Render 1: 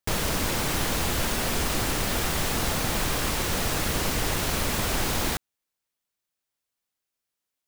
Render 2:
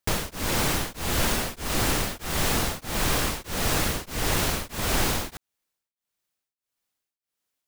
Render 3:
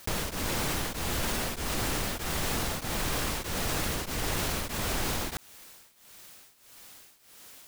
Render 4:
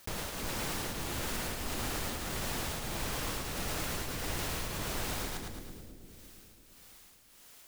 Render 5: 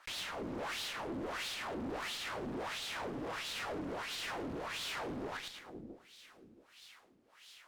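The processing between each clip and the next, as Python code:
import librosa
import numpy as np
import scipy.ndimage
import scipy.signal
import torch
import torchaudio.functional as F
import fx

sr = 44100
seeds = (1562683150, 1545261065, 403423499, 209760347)

y1 = x * np.abs(np.cos(np.pi * 1.6 * np.arange(len(x)) / sr))
y1 = F.gain(torch.from_numpy(y1), 3.0).numpy()
y2 = fx.env_flatten(y1, sr, amount_pct=70)
y2 = F.gain(torch.from_numpy(y2), -8.0).numpy()
y3 = fx.echo_split(y2, sr, split_hz=470.0, low_ms=339, high_ms=109, feedback_pct=52, wet_db=-3.5)
y3 = F.gain(torch.from_numpy(y3), -7.0).numpy()
y4 = fx.wah_lfo(y3, sr, hz=1.5, low_hz=260.0, high_hz=3800.0, q=2.7)
y4 = fx.tube_stage(y4, sr, drive_db=49.0, bias=0.6)
y4 = F.gain(torch.from_numpy(y4), 12.5).numpy()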